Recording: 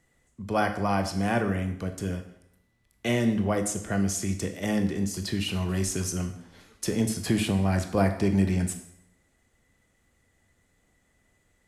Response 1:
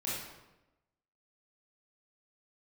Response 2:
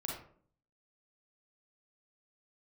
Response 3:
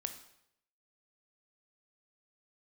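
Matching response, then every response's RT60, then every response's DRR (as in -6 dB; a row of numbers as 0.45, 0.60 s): 3; 1.0, 0.55, 0.75 s; -8.5, -2.0, 7.0 dB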